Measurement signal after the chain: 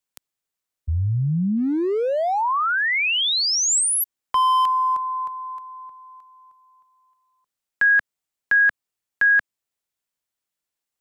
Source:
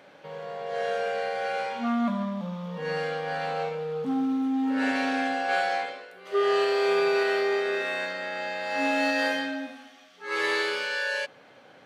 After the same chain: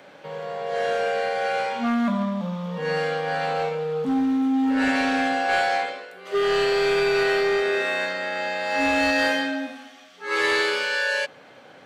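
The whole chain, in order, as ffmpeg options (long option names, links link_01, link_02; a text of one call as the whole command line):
ffmpeg -i in.wav -filter_complex "[0:a]equalizer=frequency=7600:width_type=o:width=0.23:gain=3,acrossover=split=150|1400|4100[link_01][link_02][link_03][link_04];[link_02]asoftclip=type=hard:threshold=-24.5dB[link_05];[link_01][link_05][link_03][link_04]amix=inputs=4:normalize=0,volume=5dB" out.wav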